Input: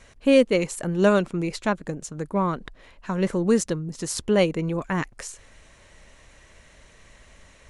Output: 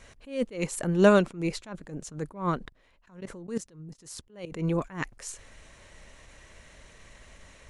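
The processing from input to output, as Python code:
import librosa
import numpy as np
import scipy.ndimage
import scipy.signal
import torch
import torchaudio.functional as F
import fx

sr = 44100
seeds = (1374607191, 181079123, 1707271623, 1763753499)

y = fx.level_steps(x, sr, step_db=21, at=(2.58, 4.52))
y = fx.attack_slew(y, sr, db_per_s=150.0)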